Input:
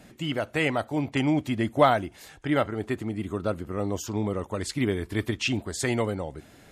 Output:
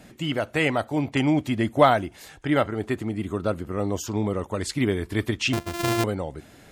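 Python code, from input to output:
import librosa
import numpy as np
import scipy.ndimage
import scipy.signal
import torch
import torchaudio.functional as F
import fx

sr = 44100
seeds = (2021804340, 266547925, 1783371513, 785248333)

y = fx.sample_sort(x, sr, block=128, at=(5.53, 6.04))
y = y * librosa.db_to_amplitude(2.5)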